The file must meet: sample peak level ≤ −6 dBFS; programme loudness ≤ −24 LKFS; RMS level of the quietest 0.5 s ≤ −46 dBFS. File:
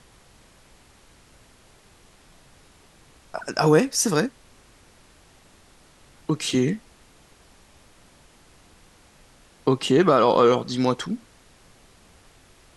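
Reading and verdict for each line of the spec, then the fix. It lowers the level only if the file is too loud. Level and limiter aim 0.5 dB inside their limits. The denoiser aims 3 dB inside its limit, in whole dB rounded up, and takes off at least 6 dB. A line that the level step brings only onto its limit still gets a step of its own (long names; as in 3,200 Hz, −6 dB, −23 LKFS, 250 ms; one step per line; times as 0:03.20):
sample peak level −5.5 dBFS: out of spec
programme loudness −21.5 LKFS: out of spec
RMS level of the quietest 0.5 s −54 dBFS: in spec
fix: level −3 dB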